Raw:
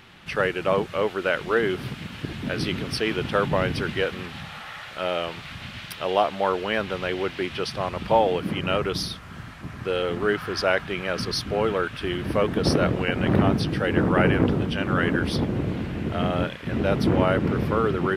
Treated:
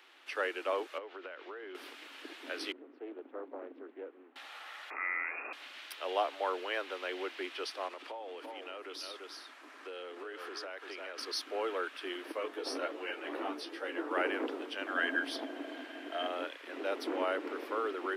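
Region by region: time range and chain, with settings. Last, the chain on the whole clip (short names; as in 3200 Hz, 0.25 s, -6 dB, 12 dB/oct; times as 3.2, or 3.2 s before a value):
0.98–1.75 compressor 16:1, threshold -28 dBFS + air absorption 200 m
2.72–4.36 band-pass 200 Hz, Q 0.91 + air absorption 400 m + Doppler distortion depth 0.47 ms
4.9–5.53 inverted band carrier 2600 Hz + fast leveller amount 50%
7.87–11.18 LPF 12000 Hz + echo 0.341 s -10 dB + compressor 20:1, threshold -27 dBFS
12.32–14.11 doubler 30 ms -12 dB + ensemble effect
14.86–16.27 low shelf 430 Hz -10.5 dB + small resonant body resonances 260/660/1600/3100 Hz, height 13 dB
whole clip: steep high-pass 270 Hz 96 dB/oct; low shelf 370 Hz -7 dB; gain -9 dB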